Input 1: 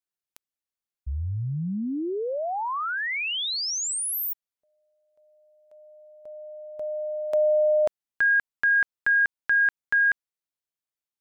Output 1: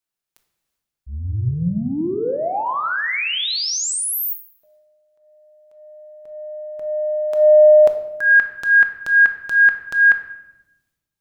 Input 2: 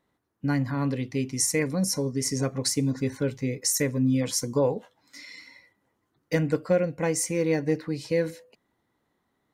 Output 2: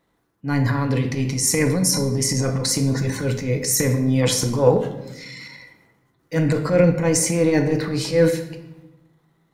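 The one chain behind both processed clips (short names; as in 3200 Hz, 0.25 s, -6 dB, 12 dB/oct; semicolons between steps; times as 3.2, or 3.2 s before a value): transient shaper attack -10 dB, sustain +8 dB; shoebox room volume 400 m³, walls mixed, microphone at 0.69 m; upward expander 1.5:1, over -22 dBFS; gain +8 dB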